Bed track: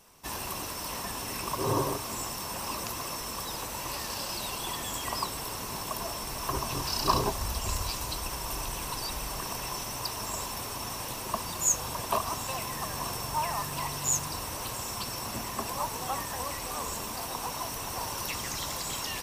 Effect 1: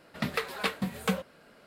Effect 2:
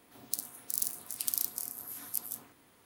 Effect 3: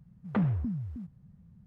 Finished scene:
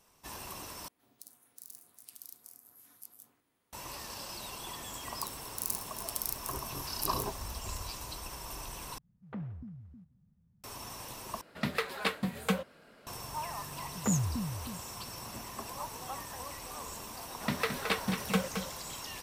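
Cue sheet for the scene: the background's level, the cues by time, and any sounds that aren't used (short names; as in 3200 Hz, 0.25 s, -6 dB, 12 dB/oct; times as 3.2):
bed track -8 dB
0.88 replace with 2 -15 dB + limiter -10.5 dBFS
4.88 add 2 -8 dB + AGC
8.98 replace with 3 -13 dB + feedback echo 0.174 s, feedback 48%, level -22.5 dB
11.41 replace with 1 -1.5 dB
13.71 add 3 -2.5 dB
17.26 add 1 -1.5 dB + echo 0.219 s -7.5 dB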